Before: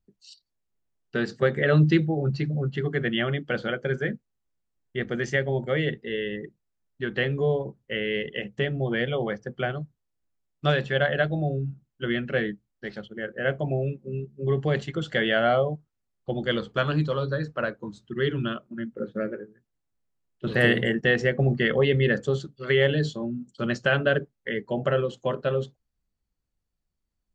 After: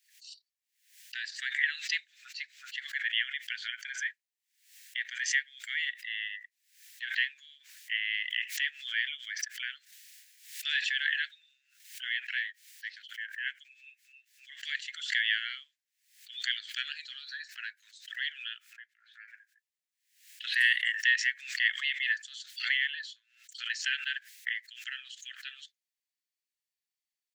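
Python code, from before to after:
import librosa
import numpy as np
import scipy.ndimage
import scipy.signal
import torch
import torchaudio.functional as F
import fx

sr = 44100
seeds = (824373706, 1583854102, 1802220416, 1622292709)

y = fx.sustainer(x, sr, db_per_s=27.0, at=(8.21, 12.07))
y = fx.tilt_eq(y, sr, slope=-4.5, at=(18.73, 19.28))
y = fx.high_shelf(y, sr, hz=4700.0, db=-11.0, at=(22.77, 23.49))
y = scipy.signal.sosfilt(scipy.signal.butter(12, 1700.0, 'highpass', fs=sr, output='sos'), y)
y = fx.pre_swell(y, sr, db_per_s=100.0)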